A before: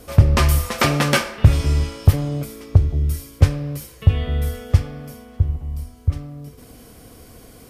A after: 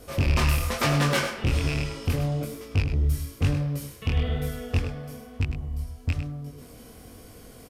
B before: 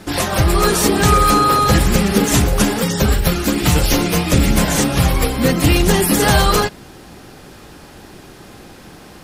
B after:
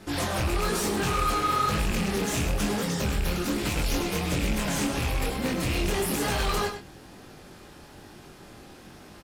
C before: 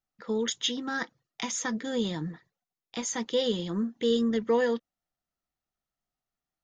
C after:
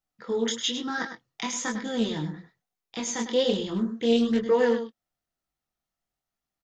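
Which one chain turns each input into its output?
rattle on loud lows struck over -13 dBFS, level -7 dBFS; in parallel at +0.5 dB: peak limiter -9.5 dBFS; on the sum: hard clipper -8.5 dBFS; chorus 1.1 Hz, delay 19.5 ms, depth 6.8 ms; on a send: delay 102 ms -9.5 dB; on the sum: loudspeaker Doppler distortion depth 0.13 ms; normalise loudness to -27 LUFS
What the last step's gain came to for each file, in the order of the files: -6.5 dB, -12.0 dB, -1.5 dB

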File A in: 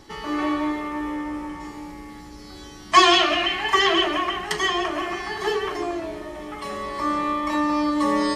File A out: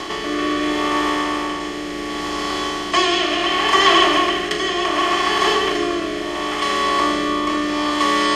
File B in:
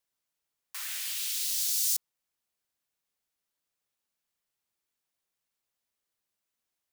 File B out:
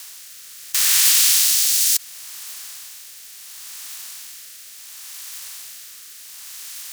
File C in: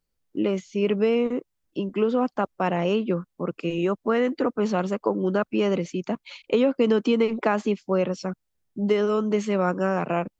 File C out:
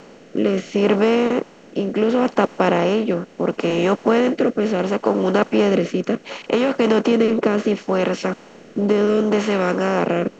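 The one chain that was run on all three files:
spectral levelling over time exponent 0.4; rotary cabinet horn 0.7 Hz; peak normalisation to -1.5 dBFS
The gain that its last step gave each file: +0.5 dB, +14.5 dB, +2.0 dB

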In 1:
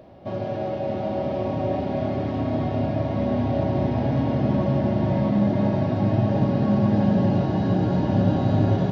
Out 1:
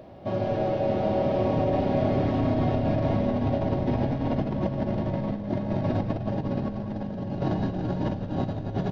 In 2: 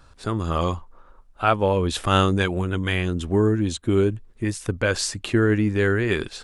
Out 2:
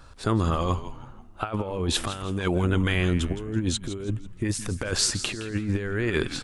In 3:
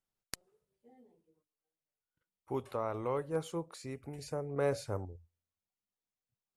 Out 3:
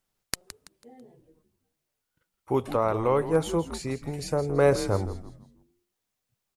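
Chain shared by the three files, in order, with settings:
compressor with a negative ratio -24 dBFS, ratio -0.5; frequency-shifting echo 165 ms, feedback 37%, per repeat -110 Hz, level -12.5 dB; normalise loudness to -27 LUFS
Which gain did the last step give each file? -1.5 dB, -1.0 dB, +11.0 dB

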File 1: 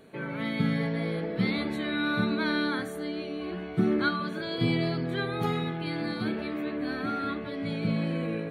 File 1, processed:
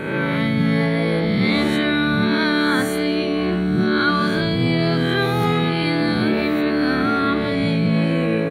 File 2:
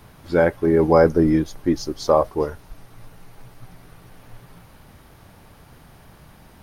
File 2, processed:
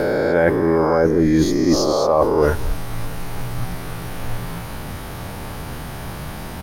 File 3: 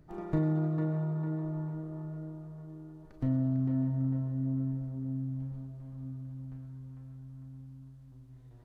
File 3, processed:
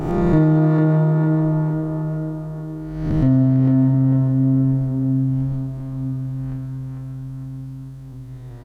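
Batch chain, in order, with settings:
reverse spectral sustain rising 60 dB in 1.11 s; reverse; compression 16:1, threshold -27 dBFS; reverse; echo from a far wall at 37 m, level -21 dB; normalise loudness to -19 LUFS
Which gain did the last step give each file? +13.0 dB, +14.5 dB, +16.5 dB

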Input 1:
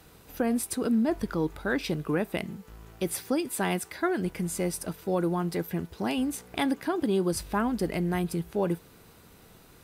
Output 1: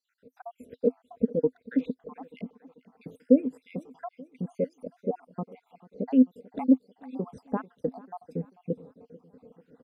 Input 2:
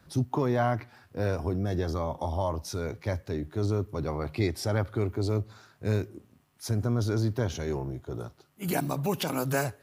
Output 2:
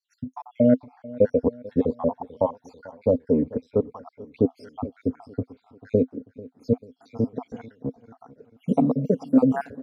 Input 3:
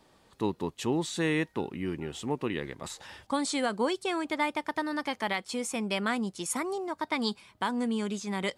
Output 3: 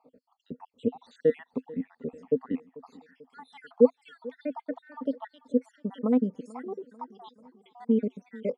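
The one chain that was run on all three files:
random holes in the spectrogram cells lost 72%; two resonant band-passes 350 Hz, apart 0.87 oct; feedback delay 441 ms, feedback 49%, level -20.5 dB; peak normalisation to -6 dBFS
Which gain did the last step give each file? +13.0 dB, +21.0 dB, +14.5 dB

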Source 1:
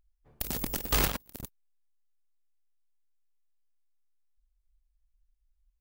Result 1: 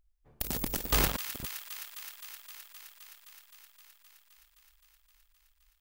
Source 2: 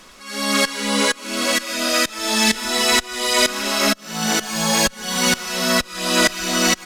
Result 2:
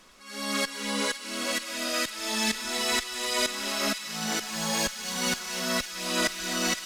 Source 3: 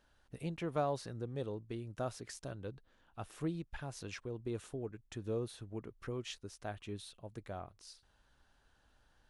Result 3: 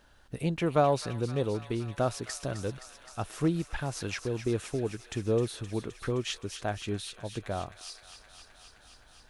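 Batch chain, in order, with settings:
feedback echo behind a high-pass 260 ms, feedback 80%, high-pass 1.6 kHz, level -10 dB; peak normalisation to -12 dBFS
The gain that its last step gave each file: 0.0 dB, -10.5 dB, +10.5 dB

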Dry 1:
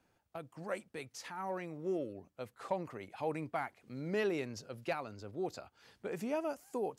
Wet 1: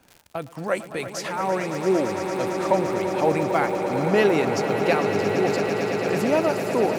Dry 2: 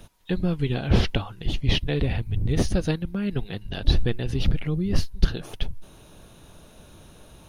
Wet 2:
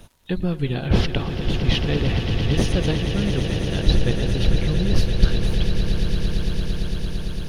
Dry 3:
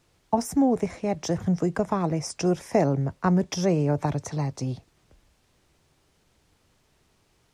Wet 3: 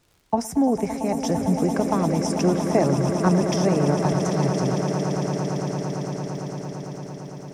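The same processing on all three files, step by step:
echo with a slow build-up 113 ms, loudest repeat 8, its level -11 dB; crackle 110 per s -48 dBFS; normalise loudness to -23 LUFS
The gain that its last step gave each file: +14.5 dB, +1.0 dB, +1.0 dB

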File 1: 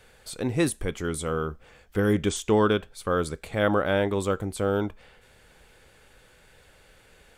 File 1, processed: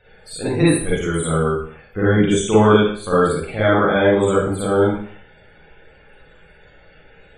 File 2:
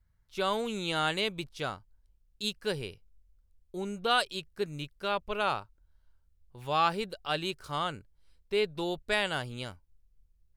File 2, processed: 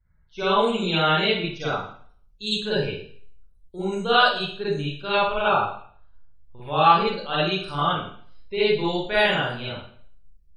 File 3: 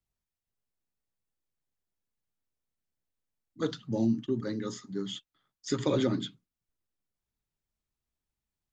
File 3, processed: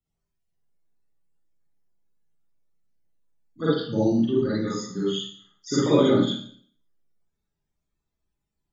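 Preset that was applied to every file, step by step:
loudest bins only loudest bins 64; Schroeder reverb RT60 0.53 s, DRR -9 dB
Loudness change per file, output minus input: +9.0 LU, +9.5 LU, +8.5 LU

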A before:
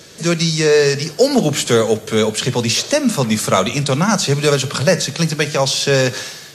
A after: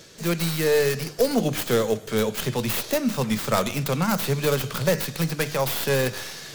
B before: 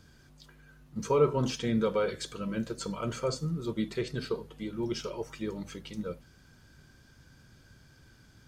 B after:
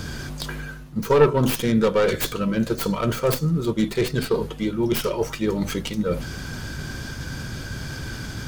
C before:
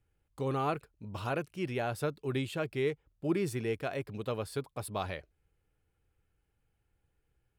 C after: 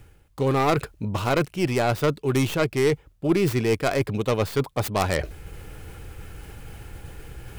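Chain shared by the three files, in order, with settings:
tracing distortion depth 0.27 ms; reverse; upward compressor, threshold -24 dBFS; reverse; normalise loudness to -24 LUFS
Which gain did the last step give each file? -8.0 dB, +8.5 dB, +8.5 dB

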